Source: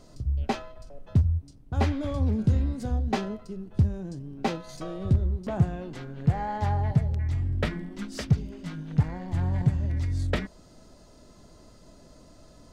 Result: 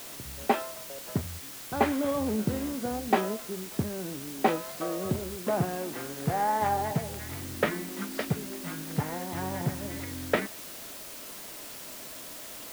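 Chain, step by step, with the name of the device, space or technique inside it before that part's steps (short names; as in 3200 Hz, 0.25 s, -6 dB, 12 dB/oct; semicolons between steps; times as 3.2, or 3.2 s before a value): wax cylinder (BPF 300–2500 Hz; wow and flutter; white noise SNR 11 dB); gain +5.5 dB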